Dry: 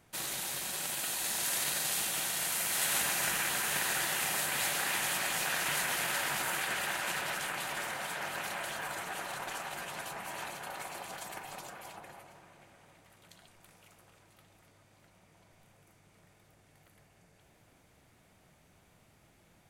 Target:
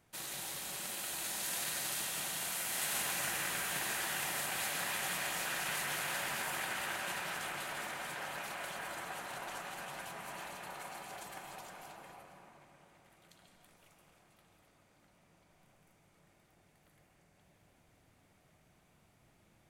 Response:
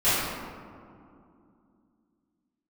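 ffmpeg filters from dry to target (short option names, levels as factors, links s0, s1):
-filter_complex "[0:a]asplit=2[s0][s1];[1:a]atrim=start_sample=2205,adelay=131[s2];[s1][s2]afir=irnorm=-1:irlink=0,volume=0.1[s3];[s0][s3]amix=inputs=2:normalize=0,volume=0.501"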